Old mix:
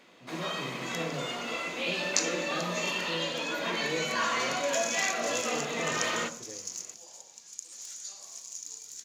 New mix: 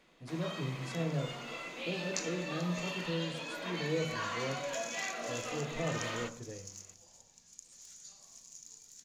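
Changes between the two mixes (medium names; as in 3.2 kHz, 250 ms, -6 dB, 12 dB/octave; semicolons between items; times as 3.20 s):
speech: remove band-pass 200–3000 Hz; first sound -8.5 dB; second sound -10.5 dB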